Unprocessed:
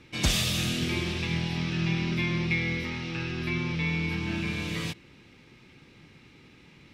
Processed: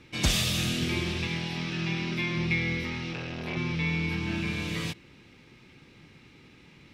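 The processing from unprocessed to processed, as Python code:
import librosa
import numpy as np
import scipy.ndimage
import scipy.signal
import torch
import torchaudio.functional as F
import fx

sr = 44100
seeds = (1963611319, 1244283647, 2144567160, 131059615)

y = fx.peak_eq(x, sr, hz=61.0, db=-10.0, octaves=2.4, at=(1.27, 2.37))
y = fx.transformer_sat(y, sr, knee_hz=900.0, at=(3.13, 3.57))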